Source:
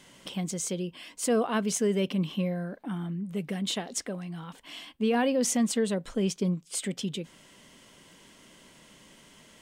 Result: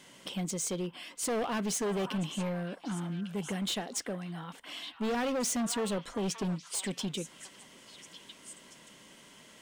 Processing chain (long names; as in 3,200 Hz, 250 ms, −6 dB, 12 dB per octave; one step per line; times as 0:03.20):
low-shelf EQ 92 Hz −11 dB
hard clipping −29 dBFS, distortion −8 dB
echo through a band-pass that steps 576 ms, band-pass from 1,200 Hz, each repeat 1.4 octaves, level −6.5 dB